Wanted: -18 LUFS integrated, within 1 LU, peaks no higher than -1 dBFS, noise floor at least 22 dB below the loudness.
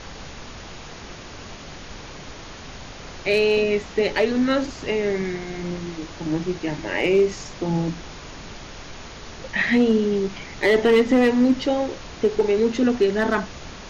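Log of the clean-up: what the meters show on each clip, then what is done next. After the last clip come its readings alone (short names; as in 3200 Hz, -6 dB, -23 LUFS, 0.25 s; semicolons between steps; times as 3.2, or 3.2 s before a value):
clipped 0.3%; flat tops at -10.5 dBFS; noise floor -39 dBFS; noise floor target -44 dBFS; loudness -21.5 LUFS; peak -10.5 dBFS; loudness target -18.0 LUFS
-> clip repair -10.5 dBFS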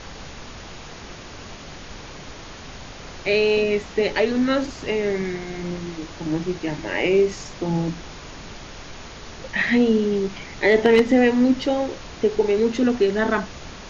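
clipped 0.0%; noise floor -39 dBFS; noise floor target -44 dBFS
-> noise print and reduce 6 dB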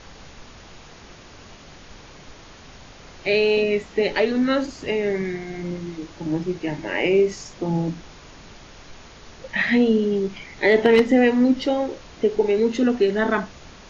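noise floor -45 dBFS; loudness -21.5 LUFS; peak -1.5 dBFS; loudness target -18.0 LUFS
-> gain +3.5 dB; limiter -1 dBFS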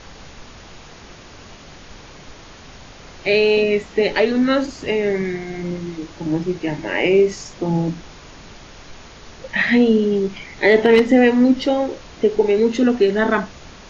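loudness -18.0 LUFS; peak -1.0 dBFS; noise floor -41 dBFS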